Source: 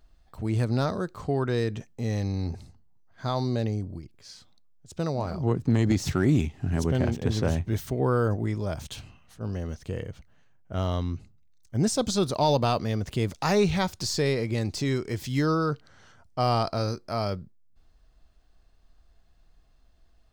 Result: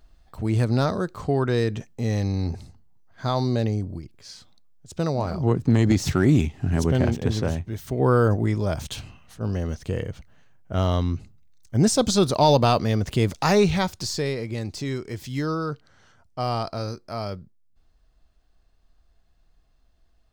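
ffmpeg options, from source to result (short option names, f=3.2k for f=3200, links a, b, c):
-af "volume=14.5dB,afade=t=out:st=7.13:d=0.64:silence=0.354813,afade=t=in:st=7.77:d=0.32:silence=0.298538,afade=t=out:st=13.31:d=1.02:silence=0.421697"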